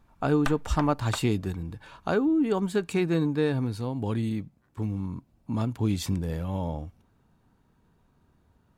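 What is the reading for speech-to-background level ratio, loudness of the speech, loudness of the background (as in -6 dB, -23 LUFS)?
11.0 dB, -28.0 LUFS, -39.0 LUFS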